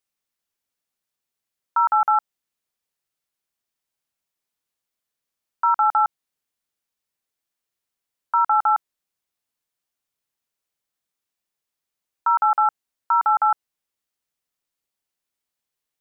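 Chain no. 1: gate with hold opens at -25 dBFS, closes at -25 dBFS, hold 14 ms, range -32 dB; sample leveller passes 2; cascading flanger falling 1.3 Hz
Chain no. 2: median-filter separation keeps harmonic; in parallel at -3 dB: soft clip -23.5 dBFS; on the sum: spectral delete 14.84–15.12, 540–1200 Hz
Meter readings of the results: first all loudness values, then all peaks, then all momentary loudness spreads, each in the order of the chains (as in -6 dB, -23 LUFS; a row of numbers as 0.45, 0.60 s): -22.5, -18.5 LUFS; -11.5, -9.0 dBFS; 8, 7 LU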